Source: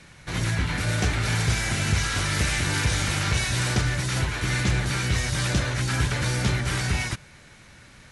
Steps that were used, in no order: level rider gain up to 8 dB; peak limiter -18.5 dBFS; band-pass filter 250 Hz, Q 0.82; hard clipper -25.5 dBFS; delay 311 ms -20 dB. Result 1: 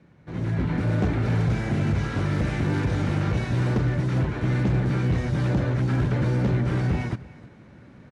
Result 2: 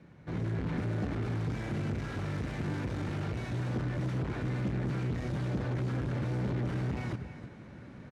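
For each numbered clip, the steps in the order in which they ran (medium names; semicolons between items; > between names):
band-pass filter > peak limiter > hard clipper > delay > level rider; delay > peak limiter > level rider > hard clipper > band-pass filter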